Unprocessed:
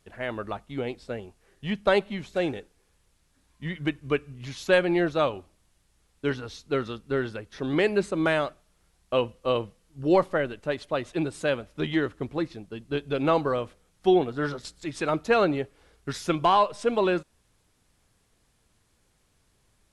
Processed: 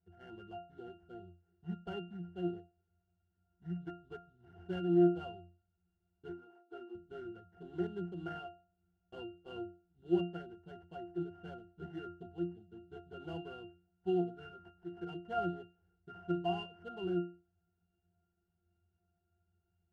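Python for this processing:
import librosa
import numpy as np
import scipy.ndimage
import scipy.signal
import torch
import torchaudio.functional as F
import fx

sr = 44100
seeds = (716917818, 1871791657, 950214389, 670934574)

y = fx.sample_hold(x, sr, seeds[0], rate_hz=3800.0, jitter_pct=20)
y = fx.cheby_ripple_highpass(y, sr, hz=240.0, ripple_db=6, at=(6.29, 6.95))
y = fx.cheby_harmonics(y, sr, harmonics=(8,), levels_db=(-34,), full_scale_db=-9.5)
y = fx.octave_resonator(y, sr, note='F', decay_s=0.35)
y = y * librosa.db_to_amplitude(1.0)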